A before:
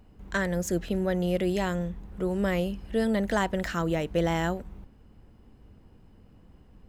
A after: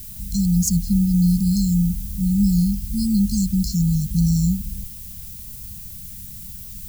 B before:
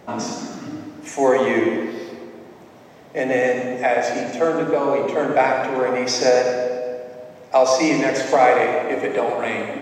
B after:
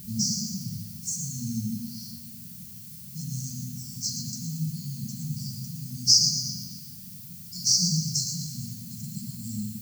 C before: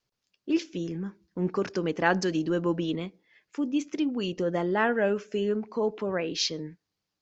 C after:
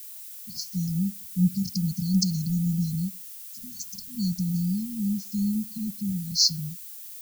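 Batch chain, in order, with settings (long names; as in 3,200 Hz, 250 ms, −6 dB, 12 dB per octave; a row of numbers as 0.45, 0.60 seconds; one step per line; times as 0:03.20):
linear-phase brick-wall band-stop 220–4,100 Hz
background noise violet −51 dBFS
normalise the peak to −6 dBFS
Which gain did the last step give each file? +13.5, +6.5, +9.5 decibels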